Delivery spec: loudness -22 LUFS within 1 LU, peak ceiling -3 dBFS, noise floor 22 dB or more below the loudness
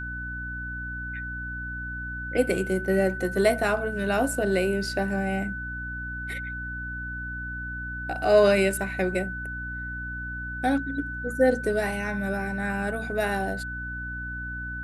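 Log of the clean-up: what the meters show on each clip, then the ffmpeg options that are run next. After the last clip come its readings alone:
hum 60 Hz; harmonics up to 300 Hz; hum level -35 dBFS; steady tone 1500 Hz; tone level -33 dBFS; loudness -27.5 LUFS; peak -7.0 dBFS; loudness target -22.0 LUFS
-> -af "bandreject=f=60:t=h:w=4,bandreject=f=120:t=h:w=4,bandreject=f=180:t=h:w=4,bandreject=f=240:t=h:w=4,bandreject=f=300:t=h:w=4"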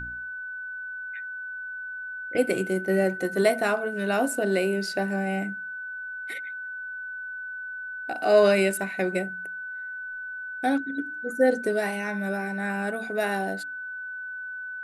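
hum none; steady tone 1500 Hz; tone level -33 dBFS
-> -af "bandreject=f=1.5k:w=30"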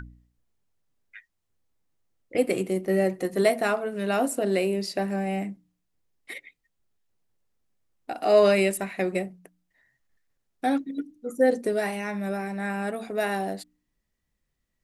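steady tone none; loudness -26.0 LUFS; peak -7.5 dBFS; loudness target -22.0 LUFS
-> -af "volume=4dB"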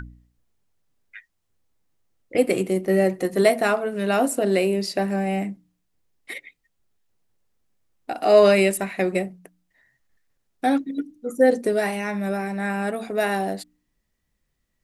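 loudness -22.0 LUFS; peak -3.5 dBFS; noise floor -74 dBFS

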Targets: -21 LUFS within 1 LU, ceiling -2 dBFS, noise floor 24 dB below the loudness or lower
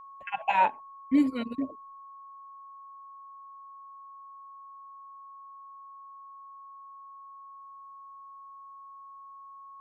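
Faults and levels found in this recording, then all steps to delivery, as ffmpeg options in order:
steady tone 1100 Hz; tone level -45 dBFS; loudness -28.0 LUFS; peak -12.0 dBFS; loudness target -21.0 LUFS
-> -af "bandreject=f=1.1k:w=30"
-af "volume=7dB"

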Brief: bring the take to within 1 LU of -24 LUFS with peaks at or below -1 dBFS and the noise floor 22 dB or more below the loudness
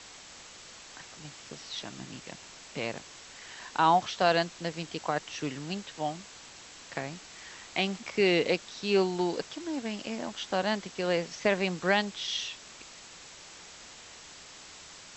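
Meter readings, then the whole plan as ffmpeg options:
noise floor -50 dBFS; noise floor target -53 dBFS; loudness -30.5 LUFS; peak -10.0 dBFS; loudness target -24.0 LUFS
-> -af "afftdn=nr=6:nf=-50"
-af "volume=6.5dB"

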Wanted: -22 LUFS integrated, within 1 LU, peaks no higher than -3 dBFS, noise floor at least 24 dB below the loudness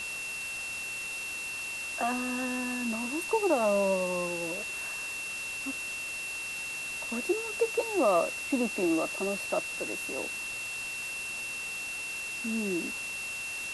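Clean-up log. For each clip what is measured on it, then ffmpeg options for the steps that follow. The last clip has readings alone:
steady tone 2700 Hz; tone level -35 dBFS; noise floor -37 dBFS; noise floor target -55 dBFS; loudness -31.0 LUFS; peak -14.0 dBFS; loudness target -22.0 LUFS
-> -af "bandreject=f=2.7k:w=30"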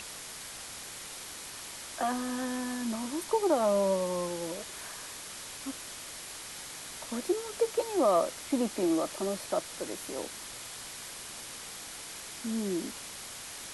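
steady tone none; noise floor -44 dBFS; noise floor target -58 dBFS
-> -af "afftdn=nr=14:nf=-44"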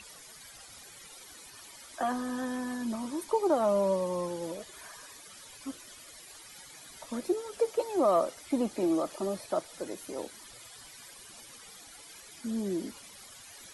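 noise floor -51 dBFS; noise floor target -56 dBFS
-> -af "afftdn=nr=6:nf=-51"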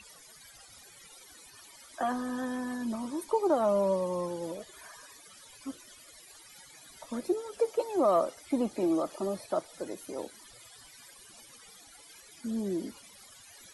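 noise floor -54 dBFS; noise floor target -56 dBFS
-> -af "afftdn=nr=6:nf=-54"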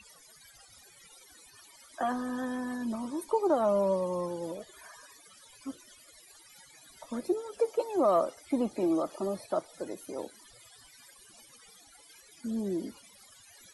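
noise floor -57 dBFS; loudness -31.5 LUFS; peak -15.5 dBFS; loudness target -22.0 LUFS
-> -af "volume=9.5dB"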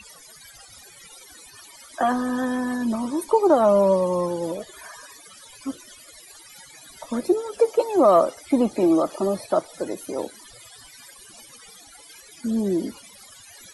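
loudness -22.0 LUFS; peak -6.0 dBFS; noise floor -48 dBFS

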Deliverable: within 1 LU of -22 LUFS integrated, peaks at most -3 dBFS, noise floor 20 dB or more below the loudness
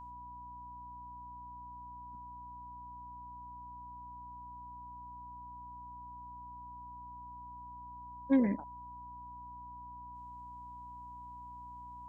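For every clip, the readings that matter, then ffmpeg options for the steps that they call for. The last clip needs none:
hum 60 Hz; harmonics up to 300 Hz; hum level -54 dBFS; steady tone 980 Hz; tone level -46 dBFS; loudness -43.0 LUFS; peak -17.5 dBFS; loudness target -22.0 LUFS
-> -af "bandreject=f=60:t=h:w=4,bandreject=f=120:t=h:w=4,bandreject=f=180:t=h:w=4,bandreject=f=240:t=h:w=4,bandreject=f=300:t=h:w=4"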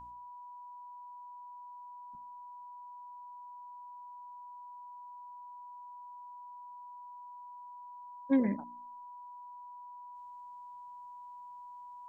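hum none; steady tone 980 Hz; tone level -46 dBFS
-> -af "bandreject=f=980:w=30"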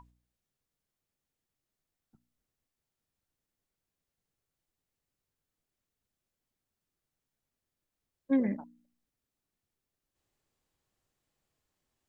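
steady tone none; loudness -31.5 LUFS; peak -18.0 dBFS; loudness target -22.0 LUFS
-> -af "volume=9.5dB"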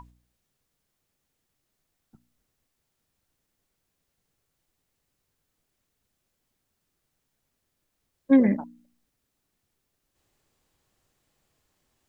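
loudness -22.0 LUFS; peak -8.5 dBFS; noise floor -79 dBFS

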